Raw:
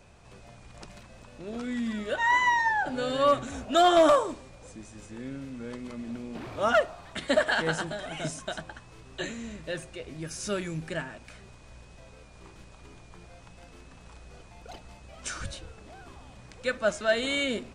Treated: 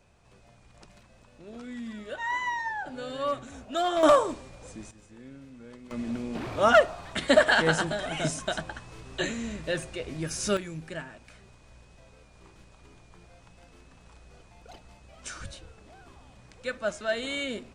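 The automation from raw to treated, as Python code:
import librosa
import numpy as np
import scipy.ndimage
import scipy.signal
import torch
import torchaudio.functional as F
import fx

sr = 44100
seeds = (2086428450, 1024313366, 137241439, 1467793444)

y = fx.gain(x, sr, db=fx.steps((0.0, -7.0), (4.03, 2.0), (4.91, -8.5), (5.91, 4.5), (10.57, -4.0)))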